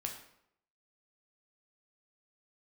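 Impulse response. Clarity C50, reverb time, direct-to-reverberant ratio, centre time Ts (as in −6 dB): 7.0 dB, 0.75 s, 1.5 dB, 23 ms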